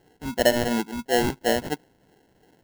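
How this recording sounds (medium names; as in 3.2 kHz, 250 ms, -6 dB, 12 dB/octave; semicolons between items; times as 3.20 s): phasing stages 2, 2.9 Hz, lowest notch 570–2000 Hz; aliases and images of a low sample rate 1.2 kHz, jitter 0%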